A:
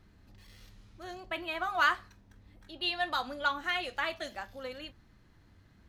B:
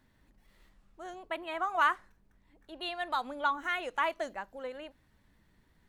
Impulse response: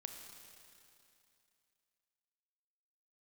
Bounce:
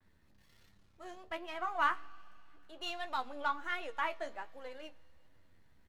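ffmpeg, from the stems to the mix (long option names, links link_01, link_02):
-filter_complex "[0:a]aeval=exprs='max(val(0),0)':channel_layout=same,volume=-5.5dB,asplit=2[link_01][link_02];[link_02]volume=-9dB[link_03];[1:a]equalizer=frequency=150:width_type=o:width=0.83:gain=-14.5,adelay=5.7,volume=-1.5dB,asplit=3[link_04][link_05][link_06];[link_05]volume=-15.5dB[link_07];[link_06]apad=whole_len=259628[link_08];[link_01][link_08]sidechaincompress=threshold=-40dB:ratio=8:attack=16:release=1210[link_09];[2:a]atrim=start_sample=2205[link_10];[link_03][link_07]amix=inputs=2:normalize=0[link_11];[link_11][link_10]afir=irnorm=-1:irlink=0[link_12];[link_09][link_04][link_12]amix=inputs=3:normalize=0,flanger=delay=9.9:depth=4.9:regen=43:speed=1.3:shape=triangular,adynamicequalizer=threshold=0.00178:dfrequency=4700:dqfactor=0.7:tfrequency=4700:tqfactor=0.7:attack=5:release=100:ratio=0.375:range=2.5:mode=cutabove:tftype=highshelf"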